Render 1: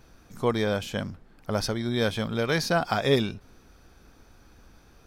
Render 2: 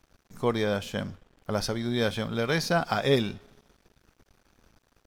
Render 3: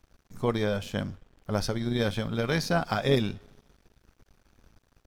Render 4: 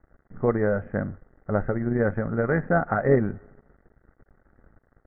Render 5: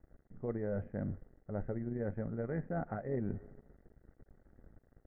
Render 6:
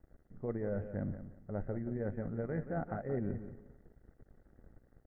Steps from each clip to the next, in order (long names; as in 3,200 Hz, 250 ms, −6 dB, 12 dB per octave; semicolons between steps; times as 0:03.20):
coupled-rooms reverb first 0.21 s, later 2.3 s, from −20 dB, DRR 15 dB; dead-zone distortion −52.5 dBFS; level −1 dB
low-shelf EQ 150 Hz +7 dB; amplitude modulation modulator 98 Hz, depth 30%
Chebyshev low-pass with heavy ripple 2,000 Hz, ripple 3 dB; notch filter 1,000 Hz, Q 9; level +5.5 dB
parametric band 1,300 Hz −11 dB 1.4 octaves; reversed playback; downward compressor 6 to 1, threshold −32 dBFS, peak gain reduction 16 dB; reversed playback; level −2 dB
repeating echo 178 ms, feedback 24%, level −11 dB